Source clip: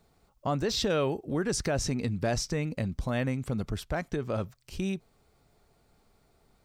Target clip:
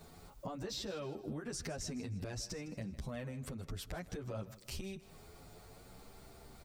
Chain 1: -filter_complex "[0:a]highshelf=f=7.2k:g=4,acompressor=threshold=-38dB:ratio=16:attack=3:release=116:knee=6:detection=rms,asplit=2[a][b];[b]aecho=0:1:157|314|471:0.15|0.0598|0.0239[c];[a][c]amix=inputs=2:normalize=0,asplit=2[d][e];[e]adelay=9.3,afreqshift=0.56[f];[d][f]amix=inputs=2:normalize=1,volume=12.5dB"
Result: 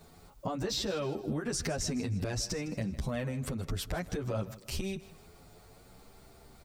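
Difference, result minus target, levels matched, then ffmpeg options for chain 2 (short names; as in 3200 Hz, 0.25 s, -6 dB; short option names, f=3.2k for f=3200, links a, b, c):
compressor: peak gain reduction -8.5 dB
-filter_complex "[0:a]highshelf=f=7.2k:g=4,acompressor=threshold=-47dB:ratio=16:attack=3:release=116:knee=6:detection=rms,asplit=2[a][b];[b]aecho=0:1:157|314|471:0.15|0.0598|0.0239[c];[a][c]amix=inputs=2:normalize=0,asplit=2[d][e];[e]adelay=9.3,afreqshift=0.56[f];[d][f]amix=inputs=2:normalize=1,volume=12.5dB"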